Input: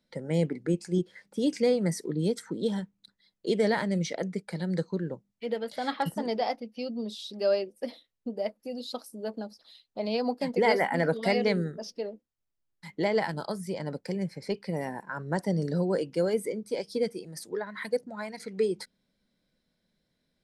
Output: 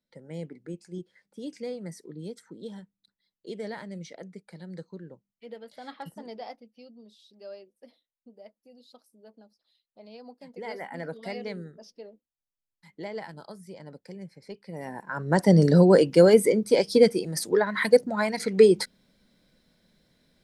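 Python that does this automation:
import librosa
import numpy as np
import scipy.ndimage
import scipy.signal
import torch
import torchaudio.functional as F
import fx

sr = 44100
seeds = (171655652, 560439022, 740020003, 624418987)

y = fx.gain(x, sr, db=fx.line((6.52, -11.0), (7.02, -17.5), (10.41, -17.5), (10.96, -10.0), (14.64, -10.0), (14.91, -1.5), (15.54, 11.0)))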